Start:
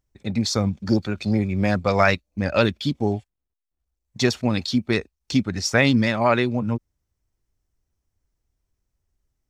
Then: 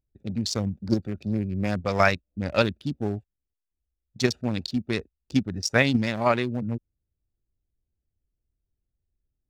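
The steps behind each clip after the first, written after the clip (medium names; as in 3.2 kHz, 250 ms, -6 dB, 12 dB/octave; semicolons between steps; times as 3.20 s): local Wiener filter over 41 samples; in parallel at -1.5 dB: level held to a coarse grid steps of 17 dB; on the sum: treble shelf 5.7 kHz +7.5 dB; trim -6.5 dB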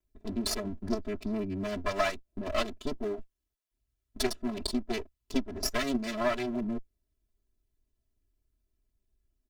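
comb filter that takes the minimum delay 4.7 ms; compression 3:1, threshold -32 dBFS, peak gain reduction 10.5 dB; comb 3 ms, depth 87%; trim +1.5 dB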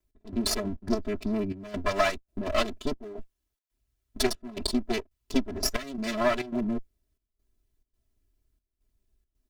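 trance gate "x..xxxx.xxxxx" 138 bpm -12 dB; trim +4 dB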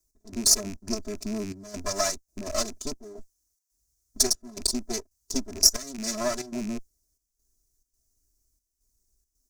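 rattle on loud lows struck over -36 dBFS, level -27 dBFS; resonant high shelf 4.3 kHz +13 dB, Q 3; harmonic-percussive split percussive -3 dB; trim -2.5 dB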